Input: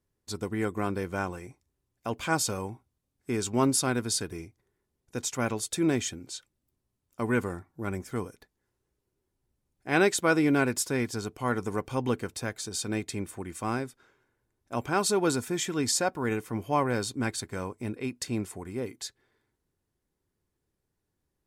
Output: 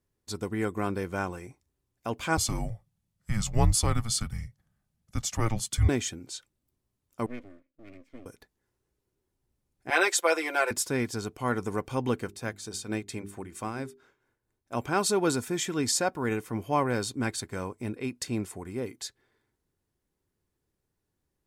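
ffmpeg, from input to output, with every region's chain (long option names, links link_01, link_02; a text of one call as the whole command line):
ffmpeg -i in.wav -filter_complex "[0:a]asettb=1/sr,asplit=3[link_01][link_02][link_03];[link_01]atrim=end=2.374[link_04];[link_02]atrim=start=2.37:end=5.89,asetpts=PTS-STARTPTS,afade=type=in:duration=0.004:curve=qsin,afade=type=out:start_time=3.516:duration=0.004:curve=qsin,equalizer=frequency=160:width_type=o:width=0.89:gain=10,afreqshift=-230[link_05];[link_03]atrim=start=5.886[link_06];[link_04][link_05]acrossfade=duration=0.004:curve1=hsin:curve2=qsin[link_07];[link_07][link_06]acrossfade=duration=0.004:curve1=qsin:curve2=hsin,asettb=1/sr,asplit=3[link_08][link_09][link_10];[link_08]atrim=end=7.264[link_11];[link_09]atrim=start=7.26:end=8.26,asetpts=PTS-STARTPTS,afade=type=in:duration=0.004:curve=qsin,afade=type=out:start_time=0.996:duration=0.004:curve=qsin,asplit=3[link_12][link_13][link_14];[link_12]bandpass=frequency=270:width_type=q:width=8,volume=0dB[link_15];[link_13]bandpass=frequency=2290:width_type=q:width=8,volume=-6dB[link_16];[link_14]bandpass=frequency=3010:width_type=q:width=8,volume=-9dB[link_17];[link_15][link_16][link_17]amix=inputs=3:normalize=0,aecho=1:1:2.8:0.38,atrim=end_sample=44100,aeval=exprs='max(val(0),0)':channel_layout=same[link_18];[link_10]atrim=start=8.256[link_19];[link_11][link_18]acrossfade=duration=0.004:curve1=hsin:curve2=qsin[link_20];[link_20][link_19]acrossfade=duration=0.004:curve1=qsin:curve2=hsin,asettb=1/sr,asplit=3[link_21][link_22][link_23];[link_21]atrim=end=9.904[link_24];[link_22]atrim=start=9.9:end=10.71,asetpts=PTS-STARTPTS,afade=type=in:duration=0.004:curve=qsin,afade=type=out:start_time=0.806:duration=0.004:curve=qsin,highpass=frequency=490:width=0.5412,highpass=frequency=490:width=1.3066,aecho=1:1:5.8:0.97,atrim=end_sample=35721[link_25];[link_23]atrim=start=10.706[link_26];[link_24][link_25]acrossfade=duration=0.004:curve1=hsin:curve2=qsin[link_27];[link_27][link_26]acrossfade=duration=0.004:curve1=qsin:curve2=hsin,asettb=1/sr,asplit=3[link_28][link_29][link_30];[link_28]atrim=end=12.254[link_31];[link_29]atrim=start=12.25:end=14.75,asetpts=PTS-STARTPTS,afade=type=in:duration=0.004:curve=qsin,afade=type=out:start_time=2.496:duration=0.004:curve=qsin,tremolo=f=4.4:d=0.57,bandreject=frequency=50:width_type=h:width=6,bandreject=frequency=100:width_type=h:width=6,bandreject=frequency=150:width_type=h:width=6,bandreject=frequency=200:width_type=h:width=6,bandreject=frequency=250:width_type=h:width=6,bandreject=frequency=300:width_type=h:width=6,bandreject=frequency=350:width_type=h:width=6,bandreject=frequency=400:width_type=h:width=6[link_32];[link_30]atrim=start=14.746[link_33];[link_31][link_32]acrossfade=duration=0.004:curve1=hsin:curve2=qsin[link_34];[link_34][link_33]acrossfade=duration=0.004:curve1=qsin:curve2=hsin" out.wav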